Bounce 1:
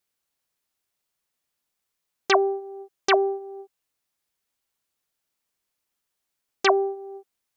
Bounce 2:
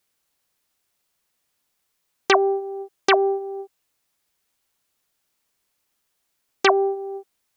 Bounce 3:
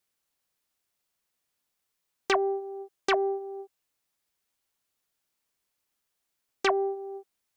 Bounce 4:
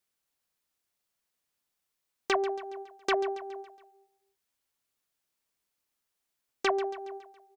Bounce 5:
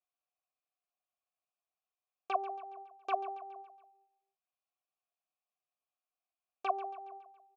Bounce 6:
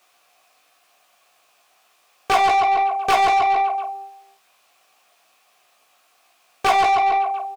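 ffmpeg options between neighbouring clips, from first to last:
-filter_complex "[0:a]acrossover=split=900|3900[a][b][c];[a]acompressor=threshold=-24dB:ratio=4[d];[b]acompressor=threshold=-24dB:ratio=4[e];[c]acompressor=threshold=-41dB:ratio=4[f];[d][e][f]amix=inputs=3:normalize=0,volume=7dB"
-af "asoftclip=type=tanh:threshold=-6dB,volume=-7dB"
-af "aecho=1:1:139|278|417|556|695:0.2|0.104|0.054|0.0281|0.0146,volume=-2.5dB"
-filter_complex "[0:a]asplit=3[a][b][c];[a]bandpass=f=730:t=q:w=8,volume=0dB[d];[b]bandpass=f=1.09k:t=q:w=8,volume=-6dB[e];[c]bandpass=f=2.44k:t=q:w=8,volume=-9dB[f];[d][e][f]amix=inputs=3:normalize=0,volume=2dB"
-filter_complex "[0:a]asplit=2[a][b];[b]highpass=f=720:p=1,volume=35dB,asoftclip=type=tanh:threshold=-19.5dB[c];[a][c]amix=inputs=2:normalize=0,lowpass=f=4.3k:p=1,volume=-6dB,aecho=1:1:17|50:0.562|0.282,volume=8.5dB"

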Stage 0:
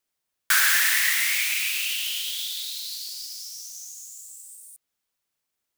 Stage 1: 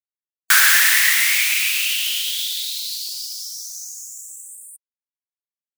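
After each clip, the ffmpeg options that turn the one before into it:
-af "afftfilt=real='re*gte(hypot(re,im),0.00282)':imag='im*gte(hypot(re,im),0.00282)':win_size=1024:overlap=0.75,volume=6.5dB"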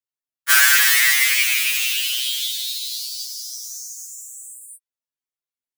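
-af "afftfilt=real='re*2.45*eq(mod(b,6),0)':imag='im*2.45*eq(mod(b,6),0)':win_size=2048:overlap=0.75,volume=2dB"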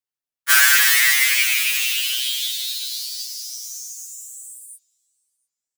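-filter_complex "[0:a]asplit=2[a][b];[b]adelay=701,lowpass=f=2.1k:p=1,volume=-20.5dB,asplit=2[c][d];[d]adelay=701,lowpass=f=2.1k:p=1,volume=0.39,asplit=2[e][f];[f]adelay=701,lowpass=f=2.1k:p=1,volume=0.39[g];[a][c][e][g]amix=inputs=4:normalize=0"

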